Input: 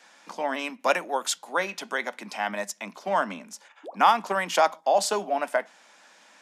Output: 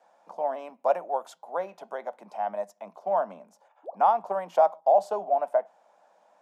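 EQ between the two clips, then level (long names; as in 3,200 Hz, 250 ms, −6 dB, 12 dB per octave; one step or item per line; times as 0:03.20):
dynamic equaliser 8,500 Hz, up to −4 dB, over −45 dBFS, Q 1.2
drawn EQ curve 100 Hz 0 dB, 270 Hz −14 dB, 680 Hz +4 dB, 1,900 Hz −20 dB, 5,100 Hz −22 dB, 14,000 Hz −17 dB
0.0 dB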